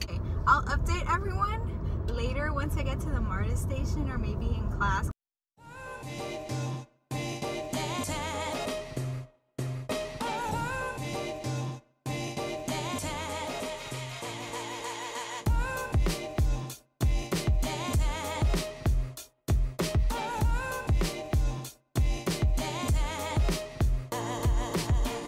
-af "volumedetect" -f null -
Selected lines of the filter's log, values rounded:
mean_volume: -30.0 dB
max_volume: -8.8 dB